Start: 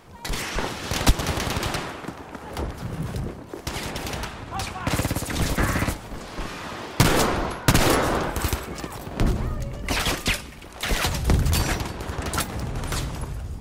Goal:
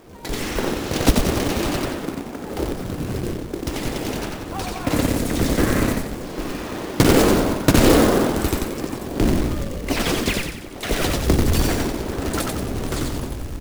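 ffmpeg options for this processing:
-filter_complex "[0:a]firequalizer=gain_entry='entry(160,0);entry(300,9);entry(910,-2)':delay=0.05:min_phase=1,asplit=2[s0][s1];[s1]asplit=6[s2][s3][s4][s5][s6][s7];[s2]adelay=90,afreqshift=-46,volume=0.708[s8];[s3]adelay=180,afreqshift=-92,volume=0.32[s9];[s4]adelay=270,afreqshift=-138,volume=0.143[s10];[s5]adelay=360,afreqshift=-184,volume=0.0646[s11];[s6]adelay=450,afreqshift=-230,volume=0.0292[s12];[s7]adelay=540,afreqshift=-276,volume=0.013[s13];[s8][s9][s10][s11][s12][s13]amix=inputs=6:normalize=0[s14];[s0][s14]amix=inputs=2:normalize=0,asettb=1/sr,asplit=3[s15][s16][s17];[s15]atrim=end=3.254[s18];[s16]atrim=start=3.25:end=3.93,asetpts=PTS-STARTPTS,afade=t=in:d=0.004:c=qsin,afade=t=out:st=0.676:d=0.004:c=qsin,asubboost=boost=6.5:cutoff=180[s19];[s17]atrim=start=3.926[s20];[s18][s19]acrossfade=d=0.004:c1=hsin:c2=qsin[s21];[s21][s20]acrossfade=d=0.004:c1=qsin:c2=hsin,acrusher=bits=3:mode=log:mix=0:aa=0.000001"

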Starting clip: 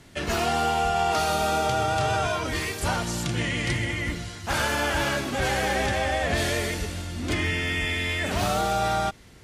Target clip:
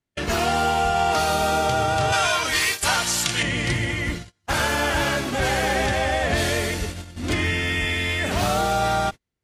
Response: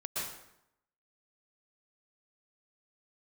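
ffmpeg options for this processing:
-filter_complex "[0:a]agate=range=0.0141:threshold=0.0282:ratio=16:detection=peak,asettb=1/sr,asplit=3[s0][s1][s2];[s0]atrim=end=2.124[s3];[s1]atrim=start=2.12:end=3.43,asetpts=PTS-STARTPTS,afade=t=in:d=0.004:c=qsin,afade=t=out:st=1.306:d=0.004:c=qsin,tiltshelf=f=780:g=-8.5[s4];[s2]atrim=start=3.426[s5];[s3][s4]acrossfade=d=0.004:c1=hsin:c2=qsin[s6];[s6][s5]acrossfade=d=0.004:c1=qsin:c2=hsin,volume=1.41"

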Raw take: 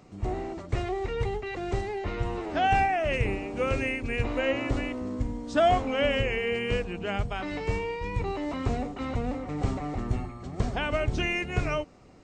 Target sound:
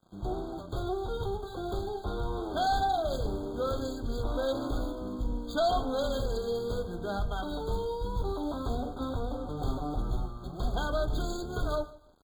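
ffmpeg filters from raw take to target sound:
-filter_complex "[0:a]equalizer=f=1800:t=o:w=0.43:g=-4.5,bandreject=f=4000:w=8.7,bandreject=f=71.27:t=h:w=4,bandreject=f=142.54:t=h:w=4,bandreject=f=213.81:t=h:w=4,bandreject=f=285.08:t=h:w=4,bandreject=f=356.35:t=h:w=4,bandreject=f=427.62:t=h:w=4,bandreject=f=498.89:t=h:w=4,bandreject=f=570.16:t=h:w=4,bandreject=f=641.43:t=h:w=4,bandreject=f=712.7:t=h:w=4,bandreject=f=783.97:t=h:w=4,bandreject=f=855.24:t=h:w=4,bandreject=f=926.51:t=h:w=4,bandreject=f=997.78:t=h:w=4,bandreject=f=1069.05:t=h:w=4,bandreject=f=1140.32:t=h:w=4,bandreject=f=1211.59:t=h:w=4,bandreject=f=1282.86:t=h:w=4,bandreject=f=1354.13:t=h:w=4,bandreject=f=1425.4:t=h:w=4,bandreject=f=1496.67:t=h:w=4,bandreject=f=1567.94:t=h:w=4,bandreject=f=1639.21:t=h:w=4,bandreject=f=1710.48:t=h:w=4,bandreject=f=1781.75:t=h:w=4,bandreject=f=1853.02:t=h:w=4,bandreject=f=1924.29:t=h:w=4,bandreject=f=1995.56:t=h:w=4,bandreject=f=2066.83:t=h:w=4,bandreject=f=2138.1:t=h:w=4,bandreject=f=2209.37:t=h:w=4,bandreject=f=2280.64:t=h:w=4,bandreject=f=2351.91:t=h:w=4,acrossover=split=600|4300[s0][s1][s2];[s0]alimiter=level_in=1.12:limit=0.0631:level=0:latency=1,volume=0.891[s3];[s2]acrusher=samples=41:mix=1:aa=0.000001:lfo=1:lforange=24.6:lforate=0.57[s4];[s3][s1][s4]amix=inputs=3:normalize=0,flanger=delay=5.6:depth=9.7:regen=-55:speed=0.19:shape=sinusoidal,asoftclip=type=tanh:threshold=0.0501,aexciter=amount=4.2:drive=5.8:freq=3300,aeval=exprs='sgn(val(0))*max(abs(val(0))-0.0015,0)':c=same,asubboost=boost=2.5:cutoff=62,asplit=2[s5][s6];[s6]aecho=0:1:150|300:0.1|0.025[s7];[s5][s7]amix=inputs=2:normalize=0,afftfilt=real='re*eq(mod(floor(b*sr/1024/1600),2),0)':imag='im*eq(mod(floor(b*sr/1024/1600),2),0)':win_size=1024:overlap=0.75,volume=1.68"

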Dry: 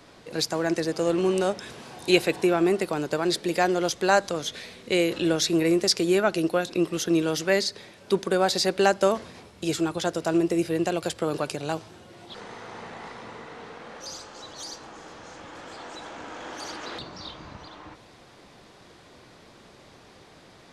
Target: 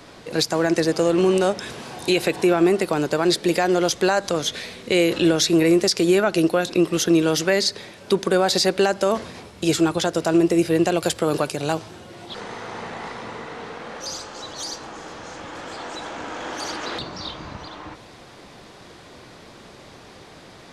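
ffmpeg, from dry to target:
-filter_complex "[0:a]asettb=1/sr,asplit=3[s0][s1][s2];[s0]atrim=end=11.004[s3];[s1]atrim=start=11:end=11.73,asetpts=PTS-STARTPTS,afade=t=in:d=0.004:c=qsin,afade=t=out:st=0.726:d=0.004:c=qsin,highshelf=f=11000:g=8.5[s4];[s2]atrim=start=11.726[s5];[s3][s4]acrossfade=d=0.004:c1=hsin:c2=qsin[s6];[s6][s5]acrossfade=d=0.004:c1=qsin:c2=hsin,alimiter=limit=0.168:level=0:latency=1:release=107,volume=2.24"

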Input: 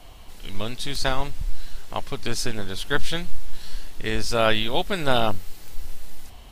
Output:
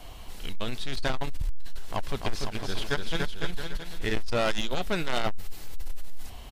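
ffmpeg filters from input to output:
-filter_complex "[0:a]acrossover=split=4200[s0][s1];[s1]acompressor=threshold=0.00631:ratio=4:attack=1:release=60[s2];[s0][s2]amix=inputs=2:normalize=0,asoftclip=type=tanh:threshold=0.0794,asplit=3[s3][s4][s5];[s3]afade=t=out:st=2.07:d=0.02[s6];[s4]aecho=1:1:290|507.5|670.6|793|884.7:0.631|0.398|0.251|0.158|0.1,afade=t=in:st=2.07:d=0.02,afade=t=out:st=4.22:d=0.02[s7];[s5]afade=t=in:st=4.22:d=0.02[s8];[s6][s7][s8]amix=inputs=3:normalize=0,volume=1.19"

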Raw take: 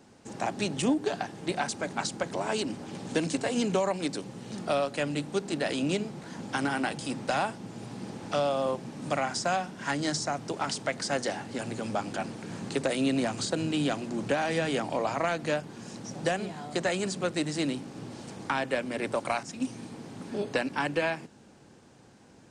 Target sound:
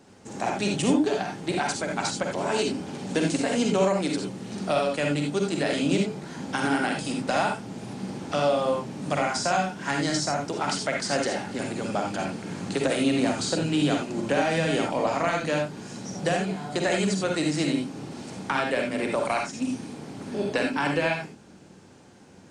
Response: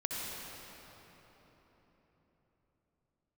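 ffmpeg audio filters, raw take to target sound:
-filter_complex "[1:a]atrim=start_sample=2205,afade=t=out:st=0.18:d=0.01,atrim=end_sample=8379,asetrate=61740,aresample=44100[s0];[0:a][s0]afir=irnorm=-1:irlink=0,volume=2.11"

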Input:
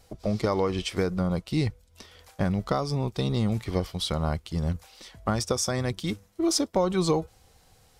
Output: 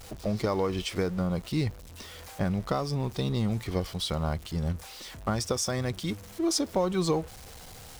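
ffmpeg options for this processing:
-af "aeval=exprs='val(0)+0.5*0.0119*sgn(val(0))':c=same,volume=0.708"

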